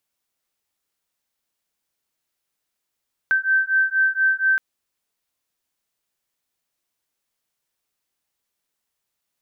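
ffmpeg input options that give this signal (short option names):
-f lavfi -i "aevalsrc='0.106*(sin(2*PI*1550*t)+sin(2*PI*1554.2*t))':d=1.27:s=44100"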